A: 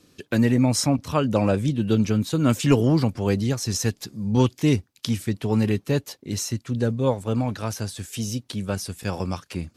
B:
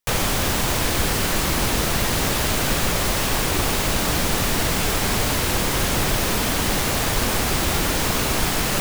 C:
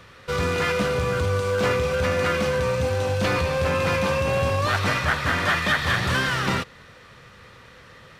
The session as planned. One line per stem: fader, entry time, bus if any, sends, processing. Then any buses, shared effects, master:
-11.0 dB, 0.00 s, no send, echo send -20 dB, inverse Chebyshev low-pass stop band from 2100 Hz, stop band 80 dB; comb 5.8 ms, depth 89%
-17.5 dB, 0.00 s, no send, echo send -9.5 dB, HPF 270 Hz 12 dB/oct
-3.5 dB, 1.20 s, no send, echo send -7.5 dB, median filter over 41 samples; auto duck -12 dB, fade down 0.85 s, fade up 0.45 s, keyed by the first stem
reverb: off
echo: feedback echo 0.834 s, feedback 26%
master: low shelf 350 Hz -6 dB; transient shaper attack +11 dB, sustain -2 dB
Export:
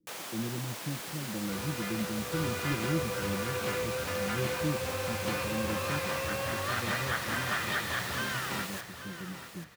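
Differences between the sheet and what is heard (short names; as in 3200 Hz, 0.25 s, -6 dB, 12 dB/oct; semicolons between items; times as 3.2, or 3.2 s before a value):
stem C: missing median filter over 41 samples; master: missing transient shaper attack +11 dB, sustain -2 dB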